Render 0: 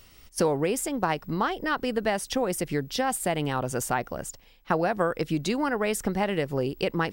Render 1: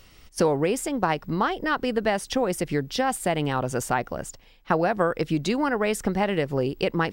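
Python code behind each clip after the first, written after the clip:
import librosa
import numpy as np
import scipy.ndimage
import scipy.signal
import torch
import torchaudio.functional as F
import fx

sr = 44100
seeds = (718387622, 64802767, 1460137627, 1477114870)

y = fx.high_shelf(x, sr, hz=8900.0, db=-8.5)
y = y * librosa.db_to_amplitude(2.5)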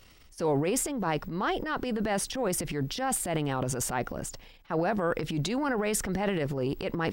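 y = fx.transient(x, sr, attack_db=-9, sustain_db=9)
y = y * librosa.db_to_amplitude(-4.5)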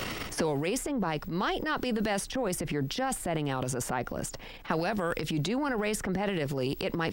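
y = fx.band_squash(x, sr, depth_pct=100)
y = y * librosa.db_to_amplitude(-2.0)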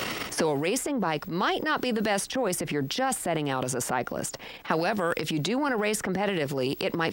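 y = fx.highpass(x, sr, hz=210.0, slope=6)
y = y * librosa.db_to_amplitude(4.5)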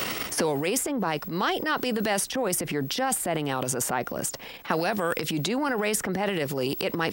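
y = fx.high_shelf(x, sr, hz=10000.0, db=10.5)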